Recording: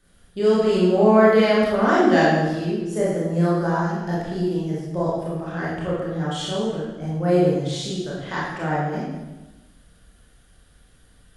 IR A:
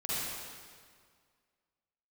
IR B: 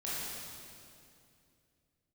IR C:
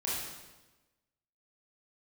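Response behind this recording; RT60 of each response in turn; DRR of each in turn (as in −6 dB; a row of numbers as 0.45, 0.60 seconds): C; 1.9, 2.5, 1.1 seconds; −10.5, −9.5, −7.5 decibels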